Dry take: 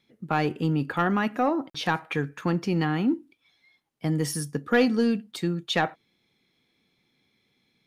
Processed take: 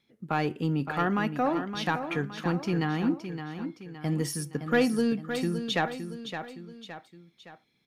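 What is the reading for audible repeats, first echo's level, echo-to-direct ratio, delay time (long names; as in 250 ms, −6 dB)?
3, −9.0 dB, −8.0 dB, 566 ms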